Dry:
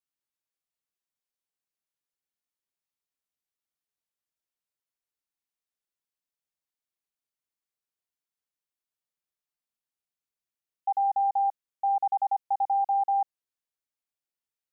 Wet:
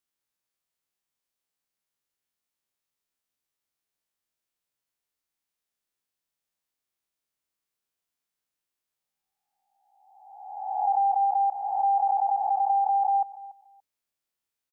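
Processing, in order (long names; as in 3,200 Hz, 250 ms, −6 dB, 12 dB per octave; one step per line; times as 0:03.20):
peak hold with a rise ahead of every peak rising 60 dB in 1.34 s
repeating echo 287 ms, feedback 17%, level −18.5 dB
level +2 dB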